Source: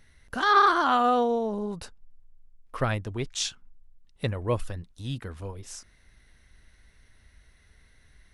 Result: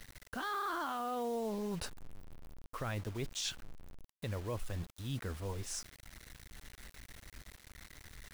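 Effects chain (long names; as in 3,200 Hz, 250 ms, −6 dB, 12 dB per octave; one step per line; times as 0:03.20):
brickwall limiter −21 dBFS, peak gain reduction 12 dB
reversed playback
downward compressor 4 to 1, threshold −39 dBFS, peak gain reduction 12 dB
reversed playback
bit reduction 9 bits
level +2 dB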